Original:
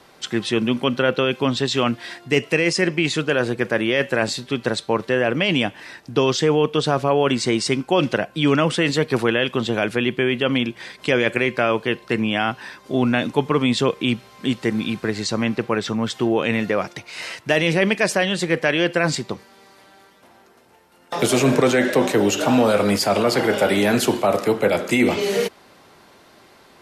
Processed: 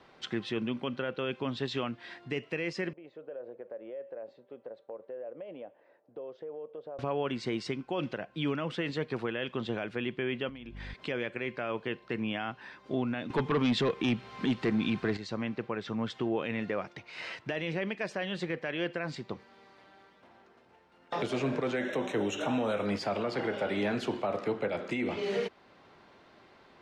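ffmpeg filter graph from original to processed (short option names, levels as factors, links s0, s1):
-filter_complex "[0:a]asettb=1/sr,asplit=3[s0][s1][s2];[s0]atrim=end=2.934[s3];[s1]atrim=start=2.93:end=6.99,asetpts=PTS-STARTPTS,afade=t=in:d=0.004:c=qsin,afade=t=out:st=4.056:d=0.004:c=qsin,bandpass=f=550:t=q:w=5.3,acompressor=threshold=0.0224:ratio=3:attack=3.2:release=140:knee=1:detection=peak[s4];[s2]atrim=start=6.986[s5];[s3][s4]acrossfade=d=0.004:c1=hsin:c2=qsin[s6];[s6][s5]acrossfade=d=0.004:c1=qsin:c2=hsin,asettb=1/sr,asplit=3[s7][s8][s9];[s7]atrim=end=10.494[s10];[s8]atrim=start=10.49:end=10.94,asetpts=PTS-STARTPTS,afade=t=in:d=0.004:c=qsin,afade=t=out:st=0.446:d=0.004:c=qsin,aeval=exprs='val(0)+0.0251*(sin(2*PI*50*n/s)+sin(2*PI*2*50*n/s)/2+sin(2*PI*3*50*n/s)/3+sin(2*PI*4*50*n/s)/4+sin(2*PI*5*50*n/s)/5)':c=same,acompressor=threshold=0.0398:ratio=10:attack=3.2:release=140:knee=1:detection=peak[s11];[s9]atrim=start=10.936[s12];[s10][s11]acrossfade=d=0.004:c1=hsin:c2=qsin[s13];[s13][s12]acrossfade=d=0.004:c1=qsin:c2=hsin,asettb=1/sr,asplit=3[s14][s15][s16];[s14]atrim=end=13.304[s17];[s15]atrim=start=13.3:end=15.17,asetpts=PTS-STARTPTS,afade=t=in:d=0.004:c=qsin,afade=t=out:st=1.866:d=0.004:c=qsin,bandreject=f=560:w=6.4,aeval=exprs='0.708*sin(PI/2*2.82*val(0)/0.708)':c=same[s18];[s16]atrim=start=15.166[s19];[s17][s18]acrossfade=d=0.004:c1=hsin:c2=qsin[s20];[s20][s19]acrossfade=d=0.004:c1=qsin:c2=hsin,asettb=1/sr,asplit=3[s21][s22][s23];[s21]atrim=end=21.764[s24];[s22]atrim=start=21.76:end=22.86,asetpts=PTS-STARTPTS,afade=t=in:d=0.004:c=qsin,afade=t=out:st=1.096:d=0.004:c=qsin,asuperstop=centerf=4700:order=8:qfactor=3.4,highshelf=f=5600:g=10[s25];[s23]atrim=start=22.856[s26];[s24][s25]acrossfade=d=0.004:c1=hsin:c2=qsin[s27];[s27][s26]acrossfade=d=0.004:c1=qsin:c2=hsin,lowpass=3600,alimiter=limit=0.2:level=0:latency=1:release=469,volume=0.422"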